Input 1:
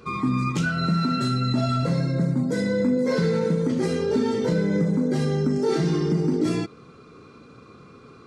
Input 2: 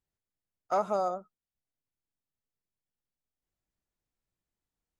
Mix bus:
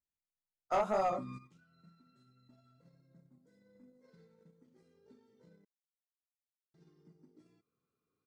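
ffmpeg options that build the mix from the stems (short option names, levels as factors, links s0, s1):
-filter_complex "[0:a]acompressor=threshold=0.0447:ratio=2.5,adelay=950,volume=0.15,asplit=3[s0][s1][s2];[s0]atrim=end=5.65,asetpts=PTS-STARTPTS,afade=t=out:st=5.646:d=0.004:c=hsin[s3];[s1]atrim=start=5.65:end=6.74,asetpts=PTS-STARTPTS,volume=0[s4];[s2]atrim=start=6.74,asetpts=PTS-STARTPTS,afade=t=in:d=0.004:c=hsin[s5];[s3][s4][s5]concat=n=3:v=0:a=1[s6];[1:a]flanger=delay=15:depth=7.7:speed=1.9,volume=1.33,asplit=2[s7][s8];[s8]apad=whole_len=406482[s9];[s6][s9]sidechaingate=range=0.224:threshold=0.00112:ratio=16:detection=peak[s10];[s10][s7]amix=inputs=2:normalize=0,agate=range=0.282:threshold=0.00178:ratio=16:detection=peak,asoftclip=type=tanh:threshold=0.0668"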